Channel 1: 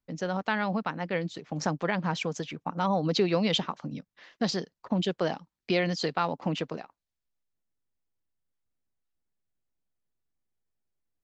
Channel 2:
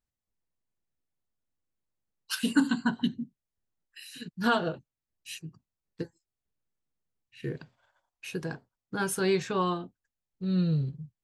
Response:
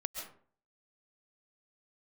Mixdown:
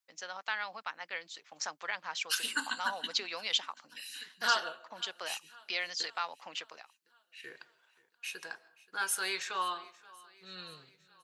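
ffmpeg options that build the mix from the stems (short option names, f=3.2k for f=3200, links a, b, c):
-filter_complex "[0:a]highshelf=f=5.4k:g=8,volume=-3.5dB[a];[1:a]volume=0dB,asplit=3[b][c][d];[c]volume=-13.5dB[e];[d]volume=-21dB[f];[2:a]atrim=start_sample=2205[g];[e][g]afir=irnorm=-1:irlink=0[h];[f]aecho=0:1:529|1058|1587|2116|2645|3174|3703|4232|4761|5290:1|0.6|0.36|0.216|0.13|0.0778|0.0467|0.028|0.0168|0.0101[i];[a][b][h][i]amix=inputs=4:normalize=0,highpass=1.2k"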